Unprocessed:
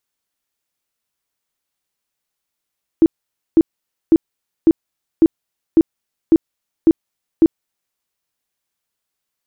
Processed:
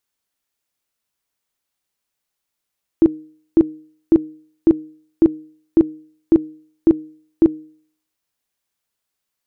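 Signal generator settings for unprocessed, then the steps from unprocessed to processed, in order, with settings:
tone bursts 326 Hz, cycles 13, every 0.55 s, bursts 9, −5.5 dBFS
hum removal 155.2 Hz, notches 3

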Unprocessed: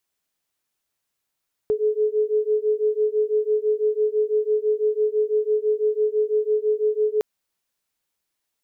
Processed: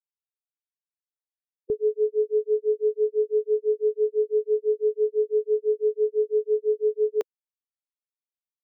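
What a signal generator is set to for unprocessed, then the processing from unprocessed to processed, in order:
two tones that beat 424 Hz, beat 6 Hz, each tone −21.5 dBFS 5.51 s
spectral dynamics exaggerated over time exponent 3

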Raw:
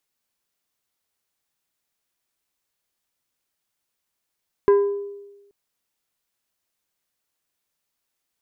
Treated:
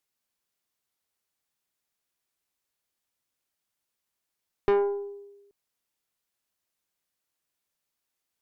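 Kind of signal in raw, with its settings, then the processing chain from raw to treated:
struck glass plate, length 0.83 s, lowest mode 403 Hz, decay 1.11 s, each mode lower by 11 dB, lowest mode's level −10 dB
tube saturation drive 18 dB, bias 0.7

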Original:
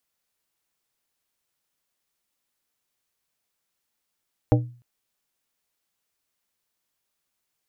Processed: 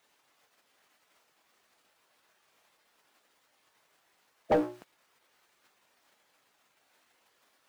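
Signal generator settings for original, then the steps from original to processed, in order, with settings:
struck glass plate, length 0.30 s, lowest mode 121 Hz, modes 5, decay 0.41 s, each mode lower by 2.5 dB, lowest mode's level −13 dB
mu-law and A-law mismatch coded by mu
gate on every frequency bin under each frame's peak −10 dB weak
mid-hump overdrive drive 29 dB, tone 1,100 Hz, clips at −14.5 dBFS

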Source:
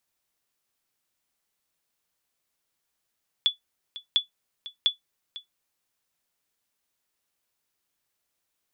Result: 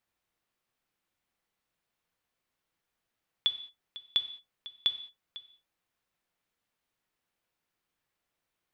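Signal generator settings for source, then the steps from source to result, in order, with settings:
ping with an echo 3,440 Hz, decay 0.13 s, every 0.70 s, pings 3, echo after 0.50 s, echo −17 dB −12.5 dBFS
bass and treble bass +2 dB, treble −10 dB
reverb whose tail is shaped and stops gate 240 ms falling, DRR 10 dB

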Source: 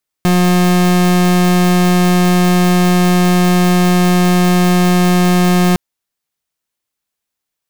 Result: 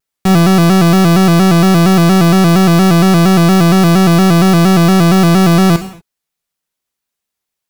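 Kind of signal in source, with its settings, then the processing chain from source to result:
pulse wave 179 Hz, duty 37% −10.5 dBFS 5.51 s
reverb whose tail is shaped and stops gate 260 ms falling, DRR 6.5 dB
pitch modulation by a square or saw wave square 4.3 Hz, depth 100 cents

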